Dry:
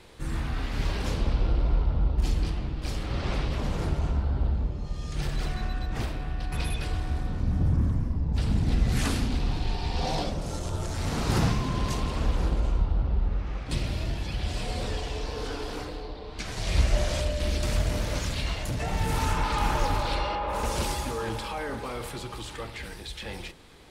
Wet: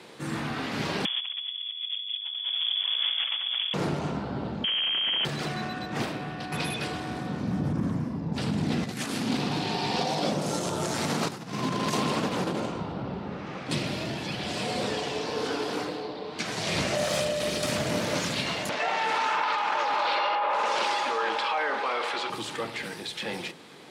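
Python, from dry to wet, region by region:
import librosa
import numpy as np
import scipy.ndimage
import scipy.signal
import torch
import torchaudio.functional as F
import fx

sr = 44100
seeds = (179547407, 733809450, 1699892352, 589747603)

y = fx.chain(x, sr, fx.freq_invert(carrier_hz=3400),
    fx.highpass(hz=900.0, slope=12), at=(1.05, 3.74))
y = fx.chain(y, sr, fx.clip_1bit(),
    fx.freq_invert(carrier_hz=3200), at=(4.64, 5.25))
y = fx.chain(y, sr, fx.highpass(hz=91.0, slope=12),
    fx.high_shelf(hz=9000.0, db=5.5),
    fx.over_compress(threshold_db=-31.0, ratio=-0.5), at=(8.83, 12.66))
y = fx.chain(y, sr, fx.lower_of_two(delay_ms=1.6),
    fx.peak_eq(hz=10000.0, db=4.5, octaves=0.75), at=(16.95, 17.72))
y = fx.chain(y, sr, fx.bandpass_edges(low_hz=690.0, high_hz=3800.0),
    fx.env_flatten(amount_pct=50), at=(18.69, 22.3))
y = scipy.signal.sosfilt(scipy.signal.butter(4, 150.0, 'highpass', fs=sr, output='sos'), y)
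y = fx.high_shelf(y, sr, hz=9700.0, db=-6.5)
y = fx.over_compress(y, sr, threshold_db=-31.0, ratio=-1.0)
y = y * 10.0 ** (3.5 / 20.0)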